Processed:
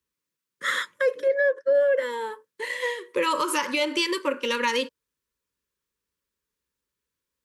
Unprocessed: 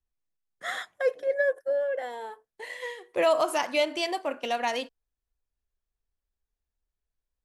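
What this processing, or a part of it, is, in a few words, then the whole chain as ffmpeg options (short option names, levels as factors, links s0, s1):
PA system with an anti-feedback notch: -filter_complex "[0:a]highpass=140,asuperstop=centerf=720:order=12:qfactor=2.4,alimiter=limit=0.0708:level=0:latency=1:release=102,asplit=3[s0][s1][s2];[s0]afade=t=out:st=1.28:d=0.02[s3];[s1]lowpass=f=5900:w=0.5412,lowpass=f=5900:w=1.3066,afade=t=in:st=1.28:d=0.02,afade=t=out:st=1.73:d=0.02[s4];[s2]afade=t=in:st=1.73:d=0.02[s5];[s3][s4][s5]amix=inputs=3:normalize=0,volume=2.66"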